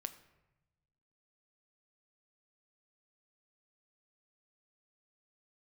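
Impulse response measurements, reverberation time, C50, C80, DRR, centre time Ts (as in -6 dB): 1.0 s, 14.0 dB, 16.0 dB, 9.0 dB, 7 ms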